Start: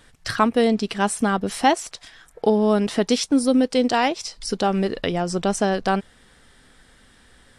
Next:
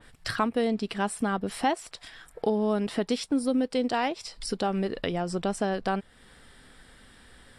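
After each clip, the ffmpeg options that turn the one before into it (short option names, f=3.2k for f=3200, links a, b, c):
-af "equalizer=f=6.3k:t=o:w=0.23:g=-9.5,acompressor=threshold=-36dB:ratio=1.5,adynamicequalizer=threshold=0.00708:dfrequency=3000:dqfactor=0.7:tfrequency=3000:tqfactor=0.7:attack=5:release=100:ratio=0.375:range=1.5:mode=cutabove:tftype=highshelf"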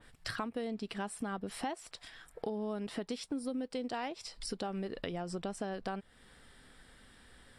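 -af "acompressor=threshold=-30dB:ratio=3,volume=-5.5dB"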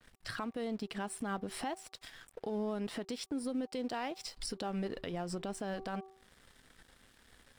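-af "aeval=exprs='sgn(val(0))*max(abs(val(0))-0.00106,0)':c=same,bandreject=f=383:t=h:w=4,bandreject=f=766:t=h:w=4,bandreject=f=1.149k:t=h:w=4,alimiter=level_in=7.5dB:limit=-24dB:level=0:latency=1:release=82,volume=-7.5dB,volume=3dB"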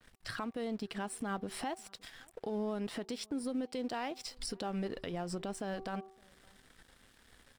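-filter_complex "[0:a]asplit=2[a][b];[b]adelay=565.6,volume=-28dB,highshelf=f=4k:g=-12.7[c];[a][c]amix=inputs=2:normalize=0"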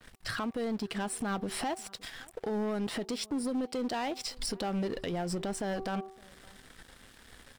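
-af "asoftclip=type=tanh:threshold=-35.5dB,volume=8dB"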